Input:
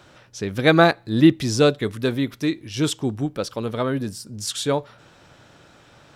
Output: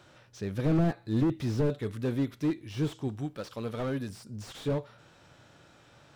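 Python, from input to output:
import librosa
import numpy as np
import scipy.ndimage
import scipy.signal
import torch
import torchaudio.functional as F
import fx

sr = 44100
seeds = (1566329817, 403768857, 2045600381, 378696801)

y = fx.hpss(x, sr, part='percussive', gain_db=-6)
y = fx.tilt_shelf(y, sr, db=-3.5, hz=820.0, at=(3.08, 4.1))
y = fx.slew_limit(y, sr, full_power_hz=37.0)
y = y * 10.0 ** (-4.5 / 20.0)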